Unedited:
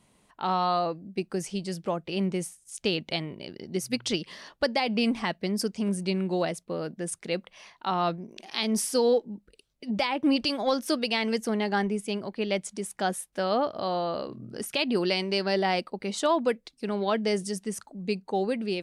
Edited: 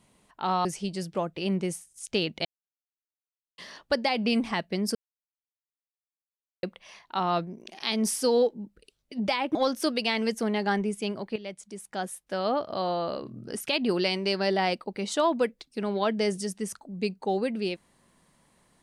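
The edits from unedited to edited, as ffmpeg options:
ffmpeg -i in.wav -filter_complex "[0:a]asplit=8[link_01][link_02][link_03][link_04][link_05][link_06][link_07][link_08];[link_01]atrim=end=0.652[link_09];[link_02]atrim=start=1.358:end=3.16,asetpts=PTS-STARTPTS,afade=type=out:start_time=1.798:duration=0.004:curve=hsin[link_10];[link_03]atrim=start=3.16:end=4.29,asetpts=PTS-STARTPTS,volume=0[link_11];[link_04]atrim=start=4.29:end=5.66,asetpts=PTS-STARTPTS,afade=type=in:duration=0.004:curve=hsin,afade=type=out:start_time=1.366:duration=0.004:curve=hsin[link_12];[link_05]atrim=start=5.66:end=7.34,asetpts=PTS-STARTPTS,volume=0[link_13];[link_06]atrim=start=7.34:end=10.262,asetpts=PTS-STARTPTS,afade=type=in:duration=0.004:curve=hsin[link_14];[link_07]atrim=start=10.608:end=12.42,asetpts=PTS-STARTPTS,afade=type=out:start_time=1.808:duration=0.004:curve=hsin:silence=0.237137[link_15];[link_08]atrim=start=12.42,asetpts=PTS-STARTPTS,afade=type=in:duration=1.43:silence=0.237137[link_16];[link_10][link_11][link_12][link_13][link_14]concat=n=5:v=0:a=1[link_17];[link_09][link_17]acrossfade=duration=0.004:curve1=hsin:curve2=hsin[link_18];[link_15][link_16]concat=n=2:v=0:a=1[link_19];[link_18][link_19]acrossfade=duration=0.004:curve1=hsin:curve2=hsin" out.wav

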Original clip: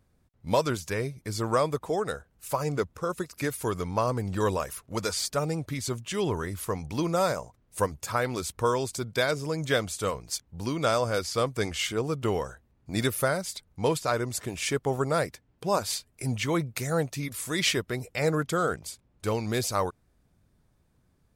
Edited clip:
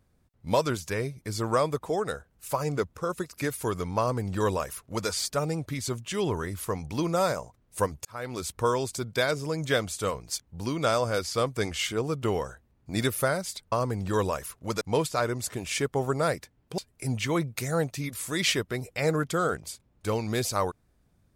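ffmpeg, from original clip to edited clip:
ffmpeg -i in.wav -filter_complex "[0:a]asplit=5[link_01][link_02][link_03][link_04][link_05];[link_01]atrim=end=8.05,asetpts=PTS-STARTPTS,afade=type=out:start_time=8.046:duration=0.004:curve=hsin[link_06];[link_02]atrim=start=8.05:end=13.722,asetpts=PTS-STARTPTS,afade=type=in:duration=0.43[link_07];[link_03]atrim=start=3.988:end=5.082[link_08];[link_04]atrim=start=13.718:end=15.692[link_09];[link_05]atrim=start=15.968[link_10];[link_06][link_07]concat=n=2:v=0:a=1[link_11];[link_11][link_08]acrossfade=duration=0.004:curve1=hsin:curve2=hsin[link_12];[link_12][link_09]acrossfade=duration=0.004:curve1=hsin:curve2=hsin[link_13];[link_13][link_10]acrossfade=duration=0.004:curve1=hsin:curve2=hsin" out.wav

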